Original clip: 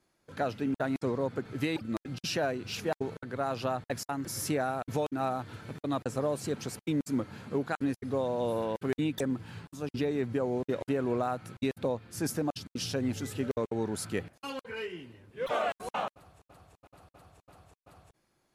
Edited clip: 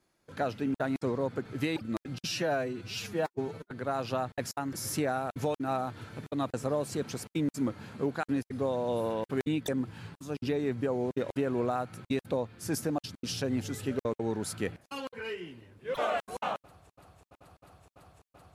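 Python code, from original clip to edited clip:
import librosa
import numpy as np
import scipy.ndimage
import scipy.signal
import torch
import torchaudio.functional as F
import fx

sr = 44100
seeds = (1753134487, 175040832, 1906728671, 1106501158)

y = fx.edit(x, sr, fx.stretch_span(start_s=2.27, length_s=0.96, factor=1.5), tone=tone)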